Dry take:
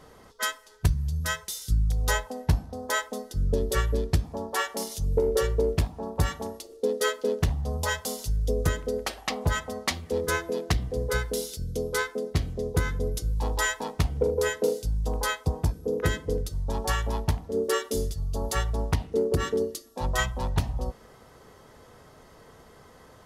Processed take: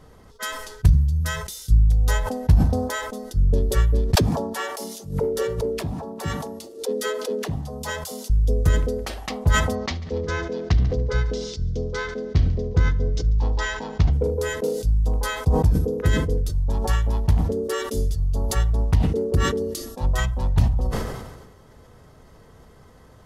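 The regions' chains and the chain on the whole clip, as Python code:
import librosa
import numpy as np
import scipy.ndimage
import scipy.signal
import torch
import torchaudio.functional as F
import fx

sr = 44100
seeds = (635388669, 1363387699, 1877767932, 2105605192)

y = fx.chain(x, sr, fx.highpass(hz=190.0, slope=12),
    fx.dispersion(late='lows', ms=68.0, hz=470.0),
    fx.pre_swell(db_per_s=140.0), at=(4.15, 8.3))
y = fx.chain(y, sr, fx.steep_lowpass(hz=6200.0, slope=36),
    fx.echo_heads(ms=71, heads='first and second', feedback_pct=49, wet_db=-23.0), at=(9.75, 14.13))
y = fx.low_shelf(y, sr, hz=200.0, db=11.0)
y = fx.sustainer(y, sr, db_per_s=45.0)
y = y * librosa.db_to_amplitude(-2.5)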